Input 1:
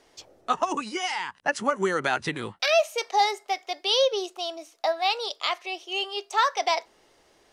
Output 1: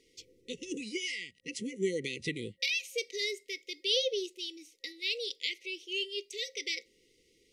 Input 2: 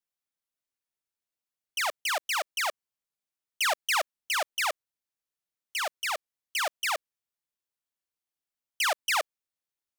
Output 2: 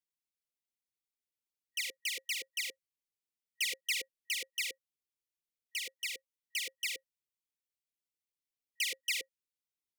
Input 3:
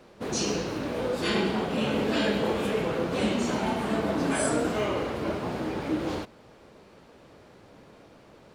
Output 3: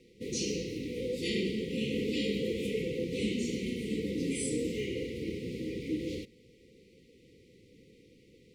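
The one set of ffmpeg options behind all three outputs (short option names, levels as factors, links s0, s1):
-af "afftfilt=real='re*(1-between(b*sr/4096,530,1900))':imag='im*(1-between(b*sr/4096,530,1900))':win_size=4096:overlap=0.75,volume=0.562"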